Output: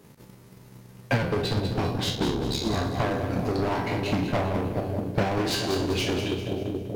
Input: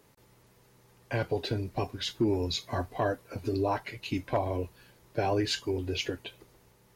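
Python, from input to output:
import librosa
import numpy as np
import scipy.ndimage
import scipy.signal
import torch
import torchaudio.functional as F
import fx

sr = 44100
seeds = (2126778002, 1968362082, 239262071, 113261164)

p1 = fx.spec_trails(x, sr, decay_s=0.59)
p2 = fx.peak_eq(p1, sr, hz=180.0, db=10.0, octaves=1.3)
p3 = fx.echo_bbd(p2, sr, ms=428, stages=2048, feedback_pct=76, wet_db=-10.0)
p4 = 10.0 ** (-27.5 / 20.0) * np.tanh(p3 / 10.0 ** (-27.5 / 20.0))
p5 = p3 + (p4 * 10.0 ** (-7.0 / 20.0))
p6 = fx.ring_mod(p5, sr, carrier_hz=35.0, at=(2.14, 2.63), fade=0.02)
p7 = np.clip(p6, -10.0 ** (-25.0 / 20.0), 10.0 ** (-25.0 / 20.0))
p8 = p7 + fx.echo_feedback(p7, sr, ms=197, feedback_pct=44, wet_db=-8.0, dry=0)
y = fx.transient(p8, sr, attack_db=10, sustain_db=-2)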